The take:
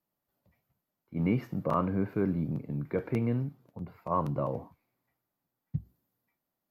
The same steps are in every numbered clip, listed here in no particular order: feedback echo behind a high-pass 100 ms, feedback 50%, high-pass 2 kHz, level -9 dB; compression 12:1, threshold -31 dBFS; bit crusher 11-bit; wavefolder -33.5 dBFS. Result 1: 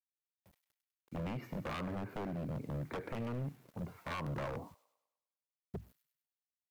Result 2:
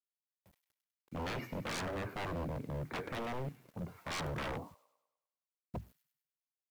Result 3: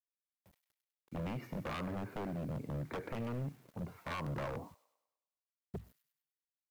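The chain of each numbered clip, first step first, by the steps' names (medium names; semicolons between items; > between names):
bit crusher > compression > feedback echo behind a high-pass > wavefolder; bit crusher > feedback echo behind a high-pass > wavefolder > compression; compression > bit crusher > feedback echo behind a high-pass > wavefolder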